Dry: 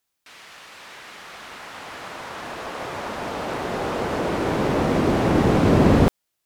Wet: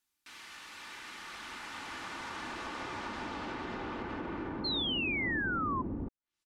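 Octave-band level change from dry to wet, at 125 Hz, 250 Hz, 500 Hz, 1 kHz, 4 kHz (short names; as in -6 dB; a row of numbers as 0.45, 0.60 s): -21.0, -17.0, -21.0, -12.0, -1.5 dB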